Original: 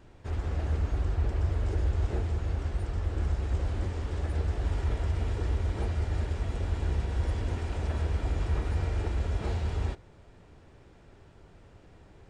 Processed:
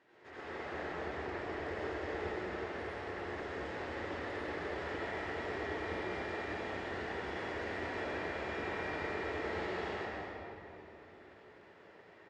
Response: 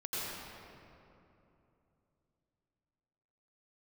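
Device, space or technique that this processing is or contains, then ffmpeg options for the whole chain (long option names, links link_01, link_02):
station announcement: -filter_complex "[0:a]highpass=370,lowpass=4800,equalizer=frequency=1900:width_type=o:width=0.3:gain=10.5,aecho=1:1:221.6|279.9:0.355|0.282[link_01];[1:a]atrim=start_sample=2205[link_02];[link_01][link_02]afir=irnorm=-1:irlink=0,volume=-3.5dB"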